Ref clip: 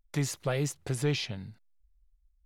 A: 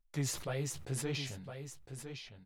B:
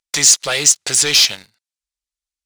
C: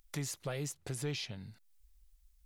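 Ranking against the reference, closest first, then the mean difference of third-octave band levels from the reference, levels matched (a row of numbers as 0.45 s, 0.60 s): C, A, B; 2.5 dB, 5.0 dB, 9.5 dB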